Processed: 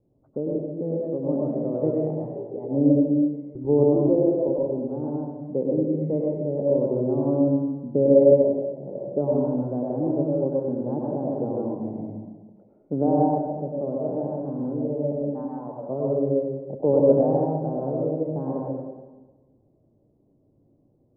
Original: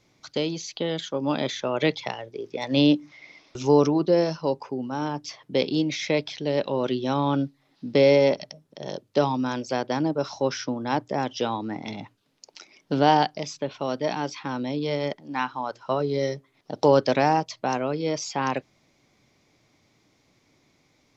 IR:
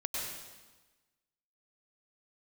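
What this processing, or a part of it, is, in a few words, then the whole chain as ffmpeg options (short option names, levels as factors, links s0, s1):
next room: -filter_complex "[0:a]asettb=1/sr,asplit=3[s0][s1][s2];[s0]atrim=end=3.964[s3];[s1]atrim=start=3.96:end=4.49,asetpts=PTS-STARTPTS,afade=t=in:d=0.004:c=qsin,afade=t=out:st=0.526:d=0.004:c=qsin,highpass=f=220:w=0.5412,highpass=f=220:w=1.3066[s4];[s2]atrim=start=4.486[s5];[s3][s4]acrossfade=d=0.004:c1=hsin:c2=qsin[s6];[s6][s5]acrossfade=d=0.004:c1=qsin:c2=hsin,lowpass=f=580:w=0.5412,lowpass=f=580:w=1.3066[s7];[1:a]atrim=start_sample=2205[s8];[s7][s8]afir=irnorm=-1:irlink=0"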